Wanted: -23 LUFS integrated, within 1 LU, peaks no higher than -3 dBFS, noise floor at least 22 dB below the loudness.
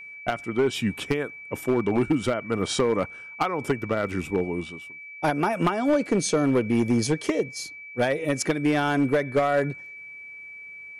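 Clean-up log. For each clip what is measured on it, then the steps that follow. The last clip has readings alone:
clipped 1.5%; flat tops at -15.5 dBFS; steady tone 2300 Hz; tone level -39 dBFS; loudness -25.5 LUFS; peak -15.5 dBFS; loudness target -23.0 LUFS
-> clip repair -15.5 dBFS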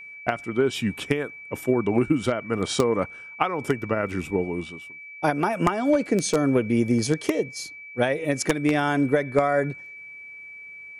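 clipped 0.0%; steady tone 2300 Hz; tone level -39 dBFS
-> notch 2300 Hz, Q 30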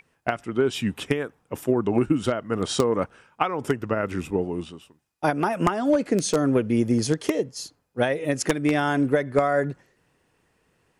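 steady tone none; loudness -24.5 LUFS; peak -6.5 dBFS; loudness target -23.0 LUFS
-> gain +1.5 dB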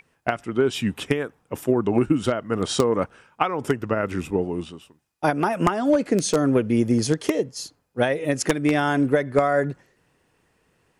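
loudness -23.0 LUFS; peak -5.0 dBFS; noise floor -68 dBFS

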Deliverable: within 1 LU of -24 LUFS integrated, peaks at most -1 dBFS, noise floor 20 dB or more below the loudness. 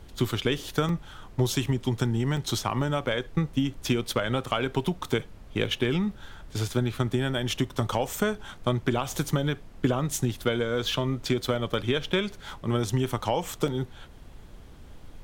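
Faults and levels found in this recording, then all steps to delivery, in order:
dropouts 8; longest dropout 1.4 ms; noise floor -47 dBFS; noise floor target -49 dBFS; loudness -28.5 LUFS; peak -10.5 dBFS; loudness target -24.0 LUFS
-> interpolate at 0.89/2.37/7.79/8.45/10.41/10.92/11.74/13.68, 1.4 ms; noise print and reduce 6 dB; gain +4.5 dB

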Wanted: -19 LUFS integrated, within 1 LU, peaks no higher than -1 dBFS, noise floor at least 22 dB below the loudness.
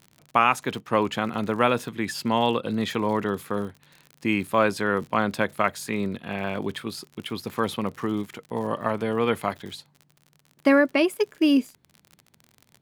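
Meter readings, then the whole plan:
ticks 48/s; loudness -25.5 LUFS; peak -4.5 dBFS; loudness target -19.0 LUFS
-> de-click; gain +6.5 dB; limiter -1 dBFS

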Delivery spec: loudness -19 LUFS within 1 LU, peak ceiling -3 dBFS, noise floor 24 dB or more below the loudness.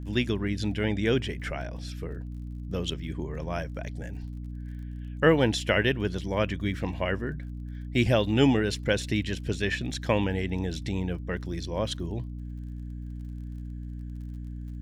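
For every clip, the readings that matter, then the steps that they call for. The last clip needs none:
ticks 39/s; hum 60 Hz; harmonics up to 300 Hz; hum level -34 dBFS; loudness -29.5 LUFS; peak -8.0 dBFS; loudness target -19.0 LUFS
-> de-click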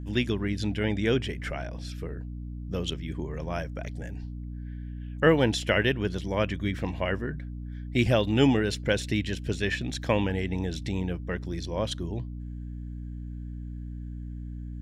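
ticks 0/s; hum 60 Hz; harmonics up to 300 Hz; hum level -34 dBFS
-> notches 60/120/180/240/300 Hz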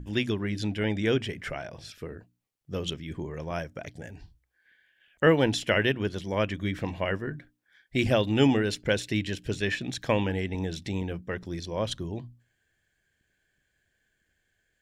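hum none; loudness -28.5 LUFS; peak -9.0 dBFS; loudness target -19.0 LUFS
-> gain +9.5 dB; limiter -3 dBFS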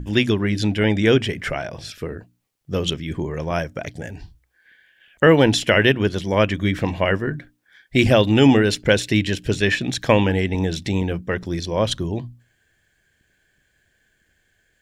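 loudness -19.5 LUFS; peak -3.0 dBFS; noise floor -67 dBFS

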